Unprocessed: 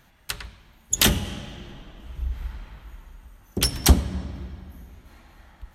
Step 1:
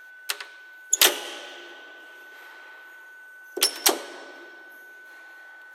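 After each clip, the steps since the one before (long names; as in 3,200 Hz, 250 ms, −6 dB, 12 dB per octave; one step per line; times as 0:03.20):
Butterworth high-pass 340 Hz 48 dB per octave
steady tone 1,500 Hz −46 dBFS
level +2 dB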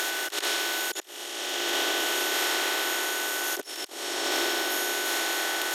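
compressor on every frequency bin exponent 0.4
compressor whose output falls as the input rises −27 dBFS, ratio −0.5
level −2 dB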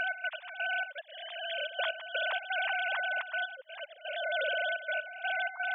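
three sine waves on the formant tracks
gate pattern "x.x..xx.xxxxx" 126 BPM −12 dB
level −4 dB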